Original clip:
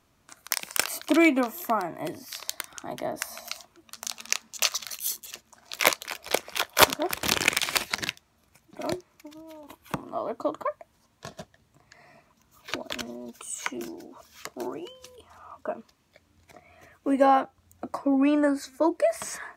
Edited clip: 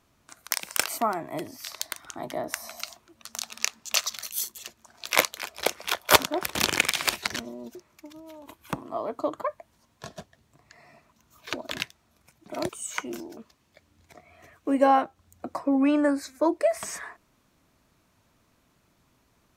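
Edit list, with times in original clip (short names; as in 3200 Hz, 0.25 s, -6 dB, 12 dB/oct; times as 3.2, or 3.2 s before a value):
0.98–1.66 cut
8.04–8.96 swap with 12.98–13.37
14.05–15.76 cut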